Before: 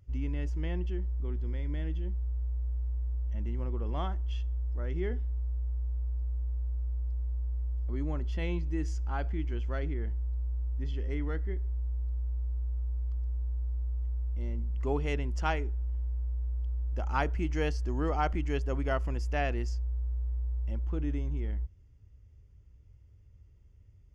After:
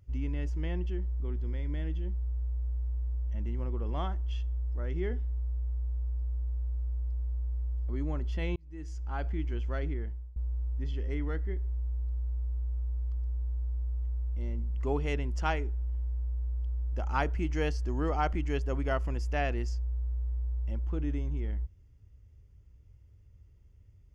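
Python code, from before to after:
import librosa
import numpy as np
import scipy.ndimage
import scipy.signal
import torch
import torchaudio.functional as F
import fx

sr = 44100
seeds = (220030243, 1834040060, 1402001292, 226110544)

y = fx.edit(x, sr, fx.fade_in_span(start_s=8.56, length_s=0.73),
    fx.fade_out_to(start_s=9.93, length_s=0.43, floor_db=-23.0), tone=tone)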